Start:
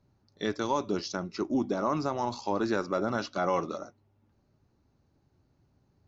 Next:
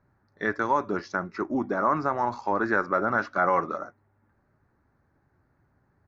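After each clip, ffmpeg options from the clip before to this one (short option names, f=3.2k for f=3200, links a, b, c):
-af "firequalizer=gain_entry='entry(260,0);entry(1700,13);entry(2900,-10)':delay=0.05:min_phase=1"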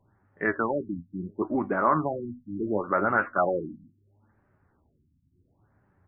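-af "flanger=delay=9:depth=4.8:regen=57:speed=0.7:shape=triangular,afftfilt=real='re*lt(b*sr/1024,290*pow(3300/290,0.5+0.5*sin(2*PI*0.72*pts/sr)))':imag='im*lt(b*sr/1024,290*pow(3300/290,0.5+0.5*sin(2*PI*0.72*pts/sr)))':win_size=1024:overlap=0.75,volume=5.5dB"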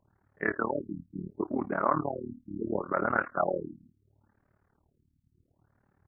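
-af "tremolo=f=37:d=0.919"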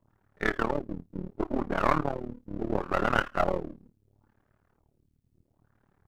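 -af "aeval=exprs='if(lt(val(0),0),0.251*val(0),val(0))':c=same,volume=4.5dB"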